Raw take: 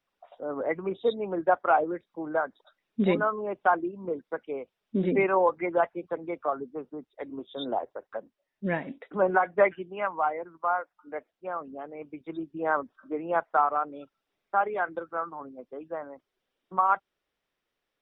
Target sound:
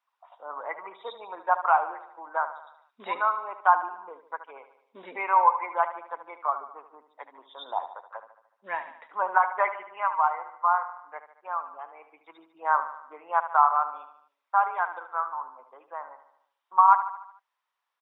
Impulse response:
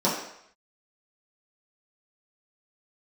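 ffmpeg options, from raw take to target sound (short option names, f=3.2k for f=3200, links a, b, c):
-af "highpass=f=970:t=q:w=4.9,aecho=1:1:74|148|222|296|370|444:0.266|0.141|0.0747|0.0396|0.021|0.0111,volume=-4dB"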